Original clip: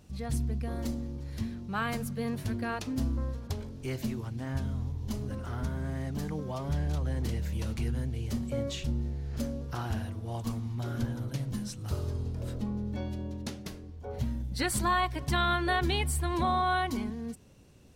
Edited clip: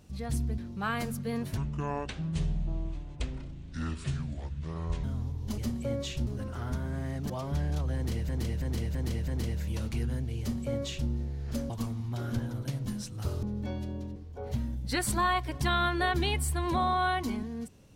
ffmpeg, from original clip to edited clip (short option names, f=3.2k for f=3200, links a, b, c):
-filter_complex "[0:a]asplit=14[a][b][c][d][e][f][g][h][i][j][k][l][m][n];[a]atrim=end=0.582[o];[b]atrim=start=1.498:end=2.494[p];[c]atrim=start=2.49:end=4.64,asetpts=PTS-STARTPTS,asetrate=27342,aresample=44100,atrim=end_sample=152927,asetpts=PTS-STARTPTS[q];[d]atrim=start=4.636:end=5.182[r];[e]atrim=start=8.248:end=8.942[s];[f]atrim=start=5.178:end=6.212[t];[g]atrim=start=6.468:end=7.462[u];[h]atrim=start=7.128:end=7.462[v];[i]atrim=start=7.128:end=7.462[w];[j]atrim=start=7.128:end=7.462[x];[k]atrim=start=7.128:end=9.552[y];[l]atrim=start=10.358:end=12.092[z];[m]atrim=start=12.728:end=13.462[aa];[n]atrim=start=13.828[ab];[o][p]acrossfade=d=0.004:c1=hsin:c2=hsin[ac];[ac][q]acrossfade=d=0.004:c1=hsin:c2=hsin[ad];[ad][r]acrossfade=d=0.004:c1=hsin:c2=hsin[ae];[ae][s]acrossfade=d=0.004:c1=hsin:c2=hsin[af];[af][t]acrossfade=d=0.004:c1=hsin:c2=hsin[ag];[ag][u]acrossfade=d=0.004:c1=hsin:c2=hsin[ah];[ah][v]acrossfade=d=0.004:c1=hsin:c2=hsin[ai];[ai][w]acrossfade=d=0.004:c1=hsin:c2=hsin[aj];[aj][x]acrossfade=d=0.004:c1=hsin:c2=hsin[ak];[ak][y]acrossfade=d=0.004:c1=hsin:c2=hsin[al];[al][z]acrossfade=d=0.004:c1=hsin:c2=hsin[am];[am][aa]acrossfade=d=0.004:c1=hsin:c2=hsin[an];[an][ab]acrossfade=d=0.004:c1=hsin:c2=hsin"